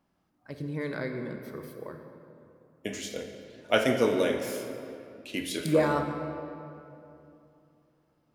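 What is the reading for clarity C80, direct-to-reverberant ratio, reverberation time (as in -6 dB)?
6.5 dB, 5.0 dB, 2.8 s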